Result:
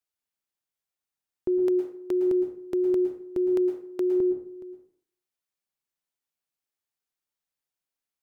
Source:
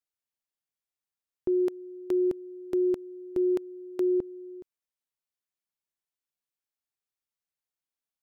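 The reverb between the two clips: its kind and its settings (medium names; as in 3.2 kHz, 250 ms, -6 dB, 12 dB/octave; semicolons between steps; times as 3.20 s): plate-style reverb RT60 0.58 s, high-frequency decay 0.65×, pre-delay 100 ms, DRR 5.5 dB; trim +1 dB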